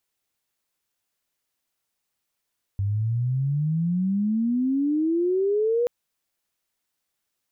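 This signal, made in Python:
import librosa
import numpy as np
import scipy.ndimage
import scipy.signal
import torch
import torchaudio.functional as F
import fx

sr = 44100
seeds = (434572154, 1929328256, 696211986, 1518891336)

y = fx.chirp(sr, length_s=3.08, from_hz=97.0, to_hz=490.0, law='logarithmic', from_db=-21.5, to_db=-19.0)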